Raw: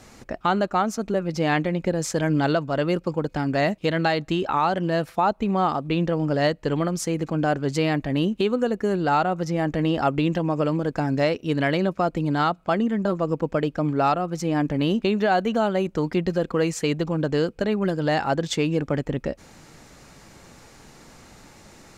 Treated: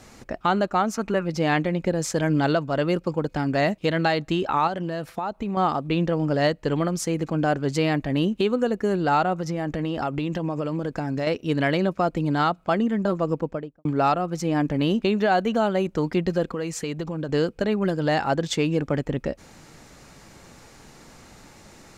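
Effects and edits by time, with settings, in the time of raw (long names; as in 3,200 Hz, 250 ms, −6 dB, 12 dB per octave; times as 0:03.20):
0:00.95–0:01.25: gain on a spectral selection 820–3,000 Hz +7 dB
0:04.67–0:05.57: downward compressor, threshold −24 dBFS
0:09.38–0:11.27: downward compressor 5 to 1, threshold −22 dBFS
0:13.27–0:13.85: fade out and dull
0:16.49–0:17.29: downward compressor 2.5 to 1, threshold −27 dBFS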